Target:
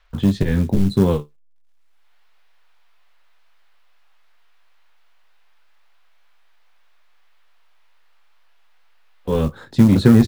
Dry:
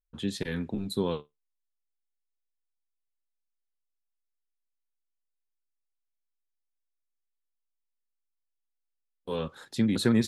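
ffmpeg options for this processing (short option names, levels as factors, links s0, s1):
-filter_complex "[0:a]acrossover=split=670|5000[s0][s1][s2];[s1]acompressor=mode=upward:threshold=0.00398:ratio=2.5[s3];[s0][s3][s2]amix=inputs=3:normalize=0,aemphasis=mode=reproduction:type=riaa,asplit=2[s4][s5];[s5]adelay=21,volume=0.355[s6];[s4][s6]amix=inputs=2:normalize=0,asplit=2[s7][s8];[s8]aeval=exprs='0.0891*(abs(mod(val(0)/0.0891+3,4)-2)-1)':c=same,volume=0.282[s9];[s7][s9]amix=inputs=2:normalize=0,adynamicequalizer=threshold=0.0398:dfrequency=240:dqfactor=1.8:tfrequency=240:tqfactor=1.8:attack=5:release=100:ratio=0.375:range=2:mode=cutabove:tftype=bell,acrusher=bits=7:mode=log:mix=0:aa=0.000001,volume=2"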